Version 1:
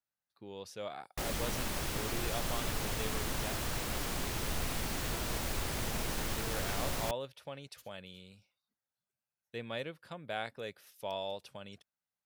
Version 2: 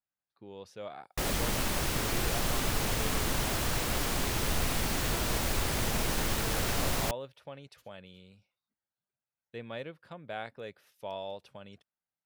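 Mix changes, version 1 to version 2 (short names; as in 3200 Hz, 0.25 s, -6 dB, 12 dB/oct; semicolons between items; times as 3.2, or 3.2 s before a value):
speech: add high shelf 4000 Hz -10.5 dB; background +5.5 dB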